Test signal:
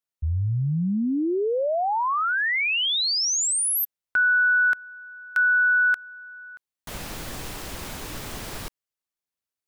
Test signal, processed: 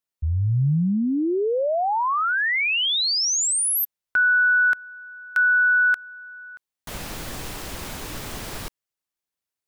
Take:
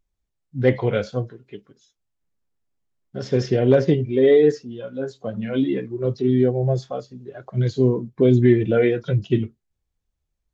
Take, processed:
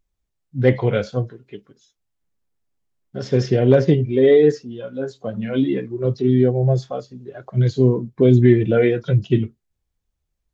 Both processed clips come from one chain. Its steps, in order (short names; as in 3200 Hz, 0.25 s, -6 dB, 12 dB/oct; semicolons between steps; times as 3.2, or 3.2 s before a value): dynamic EQ 140 Hz, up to +3 dB, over -30 dBFS, Q 1.9; gain +1.5 dB